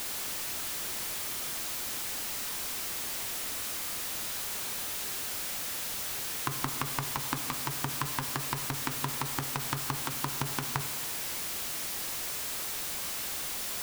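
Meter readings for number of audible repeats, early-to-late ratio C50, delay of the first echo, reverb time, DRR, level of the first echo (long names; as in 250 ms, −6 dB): no echo audible, 9.5 dB, no echo audible, 1.8 s, 8.0 dB, no echo audible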